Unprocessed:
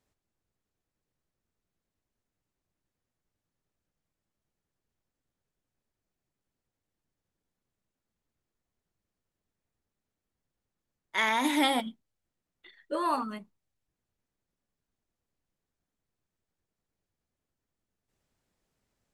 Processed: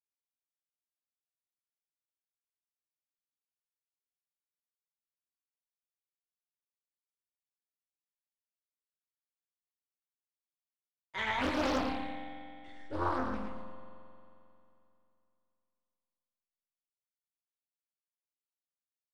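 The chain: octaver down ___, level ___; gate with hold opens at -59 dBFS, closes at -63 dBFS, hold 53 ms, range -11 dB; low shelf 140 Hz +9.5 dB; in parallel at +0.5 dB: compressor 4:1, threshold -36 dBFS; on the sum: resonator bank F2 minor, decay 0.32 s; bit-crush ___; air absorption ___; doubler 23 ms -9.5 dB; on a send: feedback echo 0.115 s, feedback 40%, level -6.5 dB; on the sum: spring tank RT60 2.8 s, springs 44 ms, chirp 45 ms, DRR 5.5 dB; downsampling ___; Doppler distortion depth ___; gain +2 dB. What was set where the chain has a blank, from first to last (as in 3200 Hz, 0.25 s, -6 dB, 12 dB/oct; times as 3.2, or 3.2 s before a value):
2 oct, -6 dB, 11-bit, 72 m, 22050 Hz, 0.85 ms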